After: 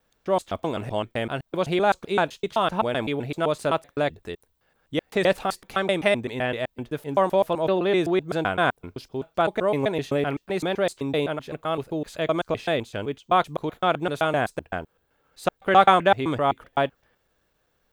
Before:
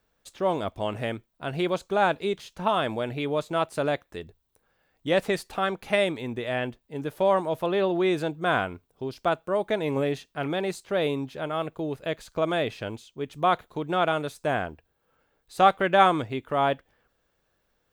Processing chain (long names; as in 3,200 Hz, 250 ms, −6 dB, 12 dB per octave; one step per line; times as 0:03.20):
slices reordered back to front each 128 ms, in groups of 2
level +2.5 dB